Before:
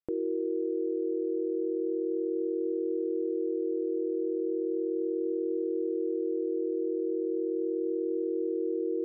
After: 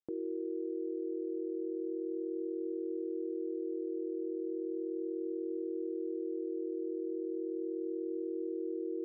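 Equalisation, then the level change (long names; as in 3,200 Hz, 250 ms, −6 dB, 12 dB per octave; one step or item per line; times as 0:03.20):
resonant band-pass 370 Hz, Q 0.81
parametric band 450 Hz −8 dB 1.3 octaves
0.0 dB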